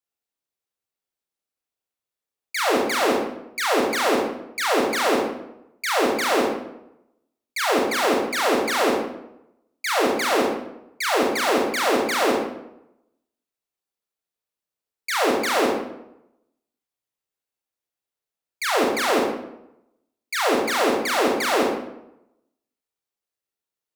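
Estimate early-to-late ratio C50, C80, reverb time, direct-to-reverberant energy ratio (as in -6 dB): 2.0 dB, 5.0 dB, 0.85 s, -1.5 dB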